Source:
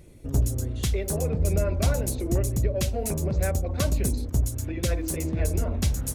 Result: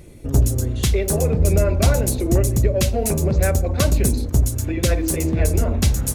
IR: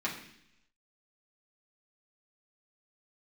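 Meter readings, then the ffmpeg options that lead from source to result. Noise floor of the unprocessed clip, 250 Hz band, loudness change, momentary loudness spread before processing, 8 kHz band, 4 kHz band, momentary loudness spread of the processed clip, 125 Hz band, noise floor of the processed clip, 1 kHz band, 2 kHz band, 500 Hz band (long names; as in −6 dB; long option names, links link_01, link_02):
−36 dBFS, +7.5 dB, +7.5 dB, 3 LU, +7.5 dB, +7.5 dB, 3 LU, +7.0 dB, −29 dBFS, +7.5 dB, +8.0 dB, +8.0 dB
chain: -filter_complex "[0:a]asplit=2[link_01][link_02];[1:a]atrim=start_sample=2205,asetrate=48510,aresample=44100[link_03];[link_02][link_03]afir=irnorm=-1:irlink=0,volume=-18dB[link_04];[link_01][link_04]amix=inputs=2:normalize=0,volume=7dB"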